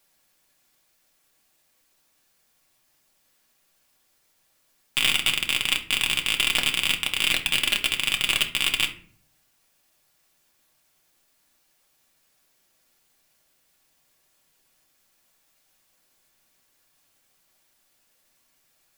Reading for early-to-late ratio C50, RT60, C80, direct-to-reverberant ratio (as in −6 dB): 12.0 dB, 0.50 s, 17.5 dB, 1.5 dB